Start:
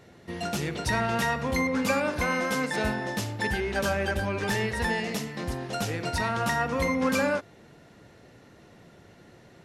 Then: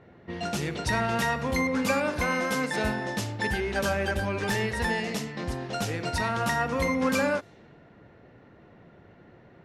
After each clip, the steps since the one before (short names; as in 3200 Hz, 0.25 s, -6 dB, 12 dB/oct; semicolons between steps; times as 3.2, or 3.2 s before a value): low-pass opened by the level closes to 1900 Hz, open at -25 dBFS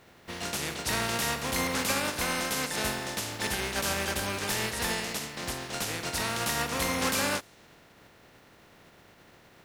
spectral contrast lowered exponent 0.44; gain -3 dB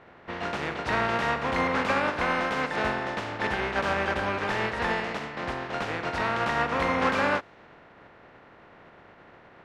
LPF 1700 Hz 12 dB/oct; low shelf 380 Hz -8 dB; gain +8.5 dB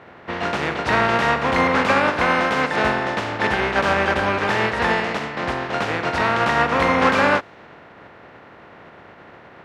HPF 56 Hz; gain +8 dB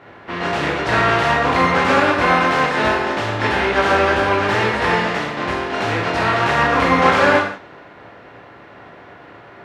non-linear reverb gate 0.22 s falling, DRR -2.5 dB; gain -1.5 dB